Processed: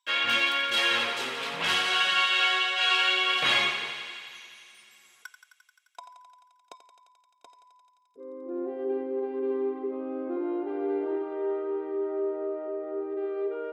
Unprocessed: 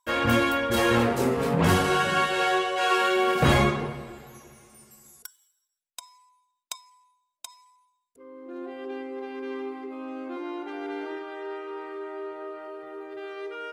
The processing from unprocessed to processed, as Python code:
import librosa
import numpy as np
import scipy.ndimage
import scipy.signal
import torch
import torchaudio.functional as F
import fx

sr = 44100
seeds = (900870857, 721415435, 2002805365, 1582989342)

y = fx.filter_sweep_bandpass(x, sr, from_hz=3100.0, to_hz=420.0, start_s=4.68, end_s=6.51, q=1.8)
y = fx.echo_thinned(y, sr, ms=87, feedback_pct=81, hz=490.0, wet_db=-10)
y = y * 10.0 ** (7.5 / 20.0)